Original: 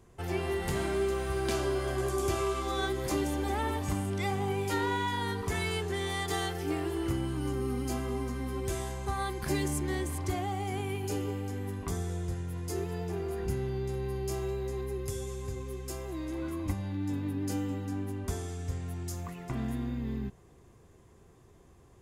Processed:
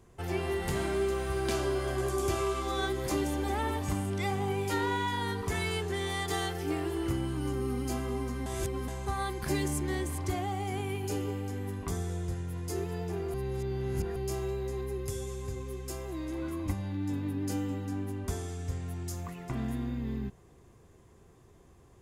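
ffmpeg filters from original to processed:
-filter_complex "[0:a]asplit=5[s0][s1][s2][s3][s4];[s0]atrim=end=8.462[s5];[s1]atrim=start=8.458:end=8.882,asetpts=PTS-STARTPTS,areverse[s6];[s2]atrim=start=8.878:end=13.342[s7];[s3]atrim=start=13.338:end=14.162,asetpts=PTS-STARTPTS,areverse[s8];[s4]atrim=start=14.158[s9];[s5][s6]acrossfade=d=0.004:c1=hsin:c2=hsin[s10];[s10][s7]acrossfade=d=0.004:c1=hsin:c2=hsin[s11];[s11][s8]acrossfade=d=0.004:c1=hsin:c2=hsin[s12];[s12][s9]acrossfade=d=0.004:c1=hsin:c2=hsin"

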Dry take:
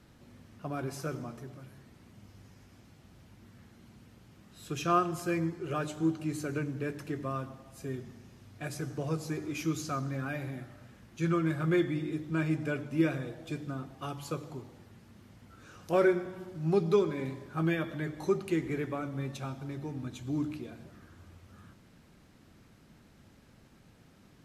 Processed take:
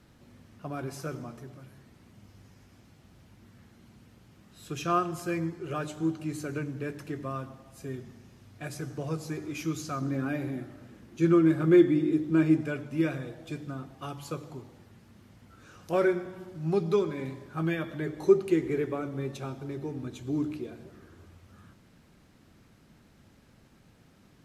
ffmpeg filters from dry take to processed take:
-filter_complex "[0:a]asettb=1/sr,asplit=3[s0][s1][s2];[s0]atrim=end=10.014[s3];[s1]atrim=start=10.01:end=12.61,asetpts=PTS-STARTPTS,afade=t=in:d=0.004:c=qsin,afade=t=out:st=2.596:d=0.004:c=qsin,equalizer=f=320:t=o:w=1.1:g=10[s4];[s2]atrim=start=12.606[s5];[s3][s4]acrossfade=d=0.004:c1=hsin:c2=qsin[s6];[s6][s5]acrossfade=d=0.004:c1=qsin:c2=hsin,asettb=1/sr,asplit=3[s7][s8][s9];[s7]atrim=end=17.994[s10];[s8]atrim=start=17.99:end=21.26,asetpts=PTS-STARTPTS,afade=t=in:d=0.004:c=qsin,afade=t=out:st=3.266:d=0.004:c=qsin,equalizer=f=400:t=o:w=0.57:g=9[s11];[s9]atrim=start=21.256[s12];[s10][s11]acrossfade=d=0.004:c1=hsin:c2=qsin[s13];[s13][s12]acrossfade=d=0.004:c1=qsin:c2=hsin"

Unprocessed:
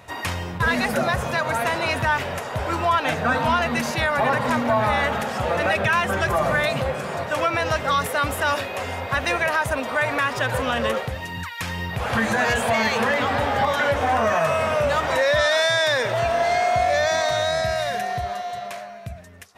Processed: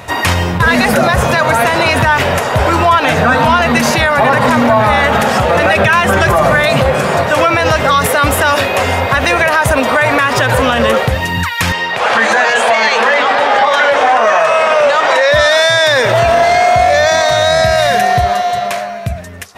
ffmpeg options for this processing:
-filter_complex "[0:a]asettb=1/sr,asplit=3[s0][s1][s2];[s0]atrim=end=11.724[s3];[s1]atrim=start=11.72:end=15.32,asetpts=PTS-STARTPTS,afade=t=in:d=0.004:c=qsin,afade=t=out:st=3.596:d=0.004:c=qsin,highpass=450,lowpass=6900[s4];[s2]atrim=start=15.316[s5];[s3][s4]acrossfade=d=0.004:c1=hsin:c2=qsin[s6];[s6][s5]acrossfade=d=0.004:c1=qsin:c2=hsin,alimiter=level_in=6.68:limit=0.891:release=50:level=0:latency=1,volume=0.891"

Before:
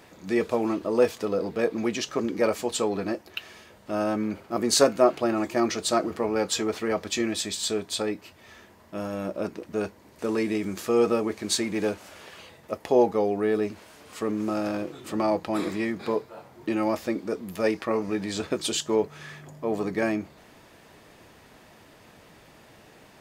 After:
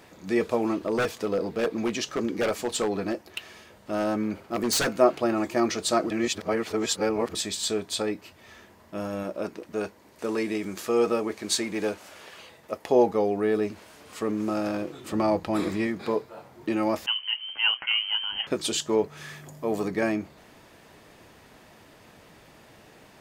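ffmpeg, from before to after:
-filter_complex "[0:a]asettb=1/sr,asplit=3[s0][s1][s2];[s0]atrim=end=0.784[s3];[s1]atrim=start=0.78:end=4.96,asetpts=PTS-STARTPTS,afade=t=in:d=0.004:c=qsin,afade=t=out:st=4.176:d=0.004:c=qsin,aeval=exprs='0.119*(abs(mod(val(0)/0.119+3,4)-2)-1)':c=same[s4];[s2]atrim=start=4.956[s5];[s3][s4]acrossfade=d=0.004:c1=hsin:c2=qsin[s6];[s6][s5]acrossfade=d=0.004:c1=qsin:c2=hsin,asettb=1/sr,asplit=3[s7][s8][s9];[s7]atrim=end=9.234[s10];[s8]atrim=start=9.23:end=12.89,asetpts=PTS-STARTPTS,afade=t=in:d=0.004:c=qsin,afade=t=out:st=3.656:d=0.004:c=qsin,lowshelf=f=210:g=-7[s11];[s9]atrim=start=12.886[s12];[s10][s11]acrossfade=d=0.004:c1=hsin:c2=qsin[s13];[s13][s12]acrossfade=d=0.004:c1=qsin:c2=hsin,asettb=1/sr,asplit=3[s14][s15][s16];[s14]atrim=end=15.124[s17];[s15]atrim=start=15.12:end=15.87,asetpts=PTS-STARTPTS,afade=t=in:d=0.004:c=qsin,afade=t=out:st=0.746:d=0.004:c=qsin,lowshelf=f=94:g=12[s18];[s16]atrim=start=15.866[s19];[s17][s18]acrossfade=d=0.004:c1=hsin:c2=qsin[s20];[s20][s19]acrossfade=d=0.004:c1=qsin:c2=hsin,asettb=1/sr,asplit=3[s21][s22][s23];[s21]atrim=end=17.064[s24];[s22]atrim=start=17.06:end=18.47,asetpts=PTS-STARTPTS,afade=t=in:d=0.004:c=qsin,afade=t=out:st=1.406:d=0.004:c=qsin,lowpass=f=2800:t=q:w=0.5098,lowpass=f=2800:t=q:w=0.6013,lowpass=f=2800:t=q:w=0.9,lowpass=f=2800:t=q:w=2.563,afreqshift=-3300[s25];[s23]atrim=start=18.466[s26];[s24][s25]acrossfade=d=0.004:c1=hsin:c2=qsin[s27];[s27][s26]acrossfade=d=0.004:c1=qsin:c2=hsin,asettb=1/sr,asplit=3[s28][s29][s30];[s28]atrim=end=19.174[s31];[s29]atrim=start=19.17:end=19.88,asetpts=PTS-STARTPTS,afade=t=in:d=0.004:c=qsin,afade=t=out:st=0.706:d=0.004:c=qsin,highshelf=f=5800:g=9[s32];[s30]atrim=start=19.876[s33];[s31][s32]acrossfade=d=0.004:c1=hsin:c2=qsin[s34];[s34][s33]acrossfade=d=0.004:c1=qsin:c2=hsin,asplit=3[s35][s36][s37];[s35]atrim=end=6.102[s38];[s36]atrim=start=6.098:end=7.352,asetpts=PTS-STARTPTS,areverse[s39];[s37]atrim=start=7.348[s40];[s38][s39]acrossfade=d=0.004:c1=hsin:c2=hsin[s41];[s41][s40]acrossfade=d=0.004:c1=hsin:c2=hsin"

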